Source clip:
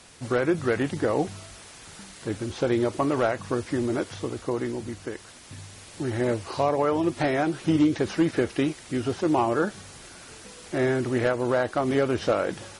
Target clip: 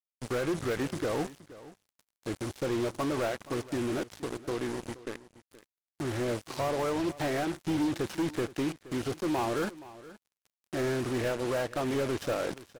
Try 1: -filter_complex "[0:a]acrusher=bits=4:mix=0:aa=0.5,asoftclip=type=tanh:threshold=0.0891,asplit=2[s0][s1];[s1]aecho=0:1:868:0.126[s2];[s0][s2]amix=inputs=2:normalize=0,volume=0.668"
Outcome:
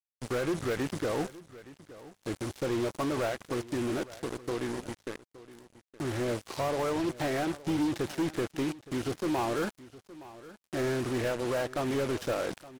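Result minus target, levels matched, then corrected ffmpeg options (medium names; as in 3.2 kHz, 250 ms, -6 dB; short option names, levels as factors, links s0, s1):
echo 395 ms late
-filter_complex "[0:a]acrusher=bits=4:mix=0:aa=0.5,asoftclip=type=tanh:threshold=0.0891,asplit=2[s0][s1];[s1]aecho=0:1:473:0.126[s2];[s0][s2]amix=inputs=2:normalize=0,volume=0.668"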